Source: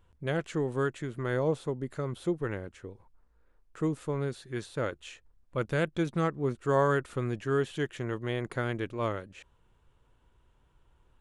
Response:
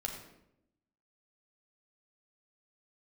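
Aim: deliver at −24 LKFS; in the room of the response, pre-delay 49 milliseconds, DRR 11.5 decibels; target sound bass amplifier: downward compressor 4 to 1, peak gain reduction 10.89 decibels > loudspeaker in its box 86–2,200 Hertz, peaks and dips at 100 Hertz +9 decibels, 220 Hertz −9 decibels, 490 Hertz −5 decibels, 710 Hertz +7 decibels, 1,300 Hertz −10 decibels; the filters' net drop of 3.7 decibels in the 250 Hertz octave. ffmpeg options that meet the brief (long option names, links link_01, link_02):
-filter_complex "[0:a]equalizer=frequency=250:width_type=o:gain=-3.5,asplit=2[link_01][link_02];[1:a]atrim=start_sample=2205,adelay=49[link_03];[link_02][link_03]afir=irnorm=-1:irlink=0,volume=-12.5dB[link_04];[link_01][link_04]amix=inputs=2:normalize=0,acompressor=threshold=-32dB:ratio=4,highpass=frequency=86:width=0.5412,highpass=frequency=86:width=1.3066,equalizer=frequency=100:width_type=q:width=4:gain=9,equalizer=frequency=220:width_type=q:width=4:gain=-9,equalizer=frequency=490:width_type=q:width=4:gain=-5,equalizer=frequency=710:width_type=q:width=4:gain=7,equalizer=frequency=1300:width_type=q:width=4:gain=-10,lowpass=frequency=2200:width=0.5412,lowpass=frequency=2200:width=1.3066,volume=14.5dB"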